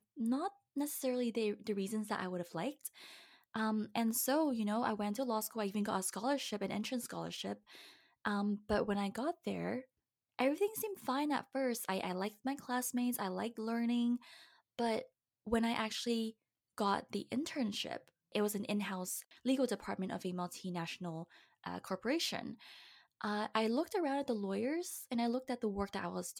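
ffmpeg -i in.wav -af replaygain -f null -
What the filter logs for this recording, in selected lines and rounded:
track_gain = +18.1 dB
track_peak = 0.078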